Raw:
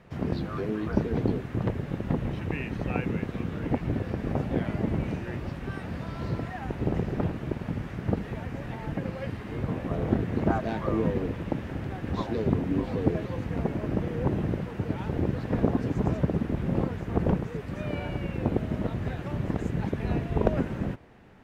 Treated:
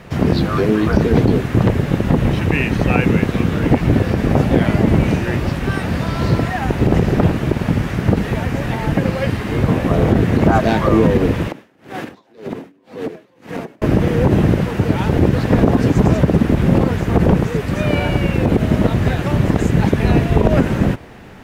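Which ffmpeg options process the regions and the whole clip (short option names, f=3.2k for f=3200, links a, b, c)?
-filter_complex "[0:a]asettb=1/sr,asplit=3[a][b][c];[a]atrim=end=11.474[d];[b]atrim=start=11.47:end=13.82,asetpts=PTS-STARTPTS,afade=t=in:d=0.004:c=qsin,afade=t=out:st=2.346:d=0.004:c=qsin,highpass=260,acompressor=threshold=-34dB:ratio=12:attack=3.2:release=140:knee=1:detection=peak,aeval=exprs='val(0)*pow(10,-32*(0.5-0.5*cos(2*PI*1.9*n/s))/20)':c=same[e];[c]atrim=start=13.816[f];[d][e]acrossfade=d=0.004:c1=hsin:c2=qsin[g];[g][f]acrossfade=d=0.004:c1=qsin:c2=hsin,highshelf=f=3.7k:g=7,alimiter=level_in=16.5dB:limit=-1dB:release=50:level=0:latency=1,volume=-1.5dB"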